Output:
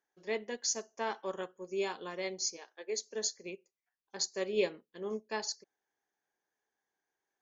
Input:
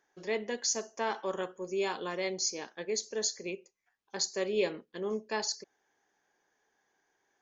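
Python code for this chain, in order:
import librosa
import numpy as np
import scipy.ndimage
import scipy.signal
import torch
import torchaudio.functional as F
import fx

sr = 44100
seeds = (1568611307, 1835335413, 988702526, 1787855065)

y = fx.highpass(x, sr, hz=fx.line((2.56, 480.0), (3.14, 190.0)), slope=24, at=(2.56, 3.14), fade=0.02)
y = fx.upward_expand(y, sr, threshold_db=-50.0, expansion=1.5)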